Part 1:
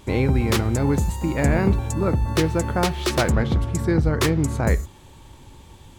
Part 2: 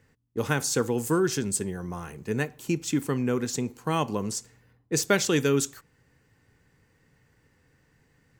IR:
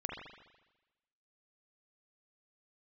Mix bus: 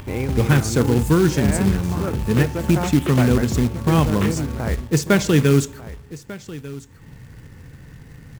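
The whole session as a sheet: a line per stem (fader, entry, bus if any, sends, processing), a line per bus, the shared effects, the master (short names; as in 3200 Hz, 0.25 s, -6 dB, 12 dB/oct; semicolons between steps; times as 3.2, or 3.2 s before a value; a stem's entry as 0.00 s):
-4.5 dB, 0.00 s, send -17.5 dB, echo send -12.5 dB, steep low-pass 3200 Hz 36 dB/oct; hum 50 Hz, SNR 31 dB
+3.0 dB, 0.00 s, send -17.5 dB, echo send -17.5 dB, tone controls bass +11 dB, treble -5 dB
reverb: on, RT60 1.1 s, pre-delay 41 ms
echo: echo 1.195 s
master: upward compressor, threshold -29 dBFS; short-mantissa float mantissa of 2-bit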